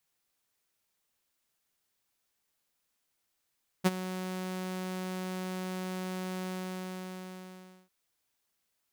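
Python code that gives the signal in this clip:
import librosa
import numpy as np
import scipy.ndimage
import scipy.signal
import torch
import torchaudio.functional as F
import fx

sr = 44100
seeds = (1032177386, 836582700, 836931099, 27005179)

y = fx.adsr_tone(sr, wave='saw', hz=185.0, attack_ms=24.0, decay_ms=32.0, sustain_db=-15.0, held_s=2.62, release_ms=1430.0, level_db=-17.0)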